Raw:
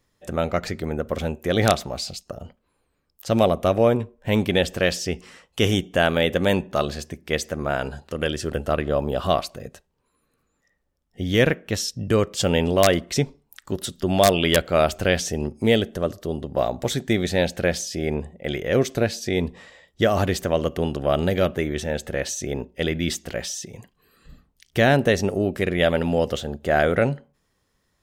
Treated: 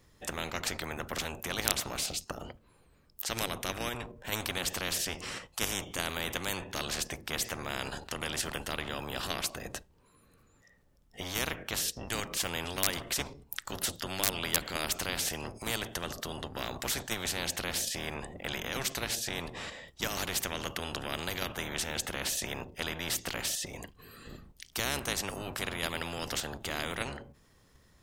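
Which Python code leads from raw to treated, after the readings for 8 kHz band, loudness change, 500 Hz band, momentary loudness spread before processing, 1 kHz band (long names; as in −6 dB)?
−1.0 dB, −11.0 dB, −19.0 dB, 11 LU, −11.5 dB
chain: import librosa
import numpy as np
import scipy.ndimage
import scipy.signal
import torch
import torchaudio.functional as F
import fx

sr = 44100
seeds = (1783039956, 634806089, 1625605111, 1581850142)

p1 = fx.octave_divider(x, sr, octaves=1, level_db=1.0)
p2 = fx.level_steps(p1, sr, step_db=16)
p3 = p1 + (p2 * librosa.db_to_amplitude(2.0))
p4 = fx.spectral_comp(p3, sr, ratio=4.0)
y = p4 * librosa.db_to_amplitude(-4.5)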